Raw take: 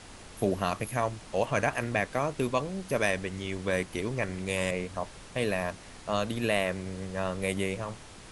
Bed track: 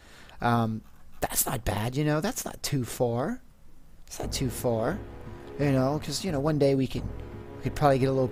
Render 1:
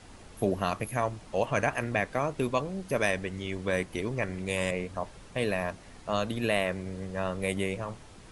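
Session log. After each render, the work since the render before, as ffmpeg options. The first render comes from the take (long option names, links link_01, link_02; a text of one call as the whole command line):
ffmpeg -i in.wav -af "afftdn=noise_reduction=6:noise_floor=-48" out.wav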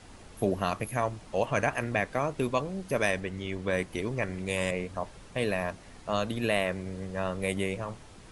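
ffmpeg -i in.wav -filter_complex "[0:a]asettb=1/sr,asplit=3[link_01][link_02][link_03];[link_01]atrim=end=3.204[link_04];[link_02]atrim=start=3.2:end=3.79,asetpts=PTS-STARTPTS,afade=type=in:duration=0.004:curve=qsin,afade=type=out:start_time=0.586:duration=0.004:curve=qsin,highshelf=frequency=5600:gain=-5[link_05];[link_03]atrim=start=3.786[link_06];[link_04][link_05]acrossfade=duration=0.004:curve1=hsin:curve2=qsin[link_07];[link_07][link_06]acrossfade=duration=0.004:curve1=qsin:curve2=hsin" out.wav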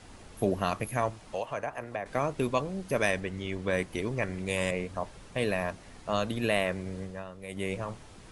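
ffmpeg -i in.wav -filter_complex "[0:a]asettb=1/sr,asplit=3[link_01][link_02][link_03];[link_01]atrim=end=1.104[link_04];[link_02]atrim=start=1.1:end=2.06,asetpts=PTS-STARTPTS,afade=type=in:duration=0.004:curve=qsin,afade=type=out:start_time=0.956:duration=0.004:curve=qsin,acrossover=split=490|1100[link_05][link_06][link_07];[link_05]acompressor=threshold=-45dB:ratio=4[link_08];[link_06]acompressor=threshold=-32dB:ratio=4[link_09];[link_07]acompressor=threshold=-45dB:ratio=4[link_10];[link_08][link_09][link_10]amix=inputs=3:normalize=0[link_11];[link_03]atrim=start=2.056[link_12];[link_04][link_11]acrossfade=duration=0.004:curve1=hsin:curve2=qsin[link_13];[link_13][link_12]acrossfade=duration=0.004:curve1=qsin:curve2=hsin,asplit=3[link_14][link_15][link_16];[link_14]atrim=end=7.25,asetpts=PTS-STARTPTS,afade=type=out:start_time=7:duration=0.25:silence=0.251189[link_17];[link_15]atrim=start=7.25:end=7.48,asetpts=PTS-STARTPTS,volume=-12dB[link_18];[link_16]atrim=start=7.48,asetpts=PTS-STARTPTS,afade=type=in:duration=0.25:silence=0.251189[link_19];[link_17][link_18][link_19]concat=n=3:v=0:a=1" out.wav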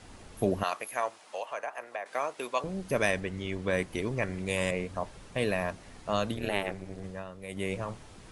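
ffmpeg -i in.wav -filter_complex "[0:a]asettb=1/sr,asplit=3[link_01][link_02][link_03];[link_01]atrim=end=0.634[link_04];[link_02]atrim=start=0.63:end=2.64,asetpts=PTS-STARTPTS,afade=type=in:duration=0.004:curve=qsin,afade=type=out:start_time=2.006:duration=0.004:curve=qsin,highpass=580[link_05];[link_03]atrim=start=2.636[link_06];[link_04][link_05]acrossfade=duration=0.004:curve1=hsin:curve2=qsin[link_07];[link_07][link_06]acrossfade=duration=0.004:curve1=qsin:curve2=hsin,asplit=3[link_08][link_09][link_10];[link_08]afade=type=out:start_time=6.34:duration=0.02[link_11];[link_09]tremolo=f=200:d=1,afade=type=in:start_time=6.34:duration=0.02,afade=type=out:start_time=7.03:duration=0.02[link_12];[link_10]afade=type=in:start_time=7.03:duration=0.02[link_13];[link_11][link_12][link_13]amix=inputs=3:normalize=0" out.wav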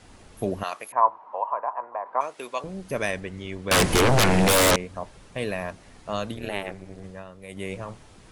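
ffmpeg -i in.wav -filter_complex "[0:a]asettb=1/sr,asplit=3[link_01][link_02][link_03];[link_01]atrim=end=0.924[link_04];[link_02]atrim=start=0.92:end=2.21,asetpts=PTS-STARTPTS,afade=type=in:duration=0.004:curve=qsin,afade=type=out:start_time=1.286:duration=0.004:curve=qsin,lowpass=frequency=990:width_type=q:width=9.8[link_05];[link_03]atrim=start=2.206[link_06];[link_04][link_05]acrossfade=duration=0.004:curve1=hsin:curve2=qsin[link_07];[link_07][link_06]acrossfade=duration=0.004:curve1=qsin:curve2=hsin,asettb=1/sr,asplit=3[link_08][link_09][link_10];[link_08]atrim=end=3.714[link_11];[link_09]atrim=start=3.71:end=4.76,asetpts=PTS-STARTPTS,afade=type=in:duration=0.004:curve=qsin,afade=type=out:start_time=1.046:duration=0.004:curve=qsin,aeval=exprs='0.188*sin(PI/2*8.91*val(0)/0.188)':channel_layout=same[link_12];[link_10]atrim=start=4.756[link_13];[link_11][link_12]acrossfade=duration=0.004:curve1=hsin:curve2=qsin[link_14];[link_14][link_13]acrossfade=duration=0.004:curve1=qsin:curve2=hsin" out.wav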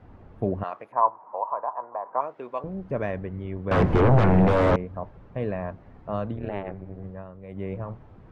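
ffmpeg -i in.wav -af "lowpass=1200,equalizer=frequency=100:width=0.88:gain=5.5" out.wav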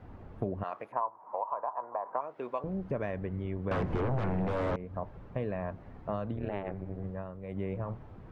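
ffmpeg -i in.wav -af "acompressor=threshold=-30dB:ratio=5" out.wav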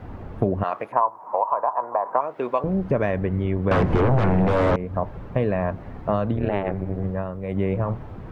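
ffmpeg -i in.wav -af "volume=12dB" out.wav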